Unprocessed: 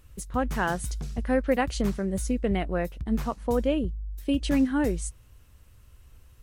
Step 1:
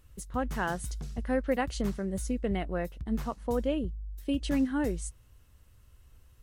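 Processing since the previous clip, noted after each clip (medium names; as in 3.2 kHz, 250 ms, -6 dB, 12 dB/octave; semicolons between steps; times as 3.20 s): band-stop 2.4 kHz, Q 20; trim -4.5 dB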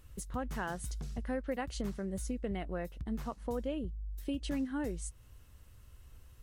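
compression 2:1, threshold -42 dBFS, peak gain reduction 10.5 dB; trim +2 dB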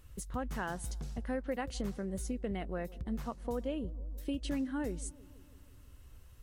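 feedback echo behind a low-pass 165 ms, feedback 67%, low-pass 780 Hz, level -20 dB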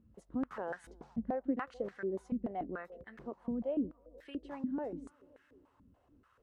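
step-sequenced band-pass 6.9 Hz 210–1700 Hz; trim +9 dB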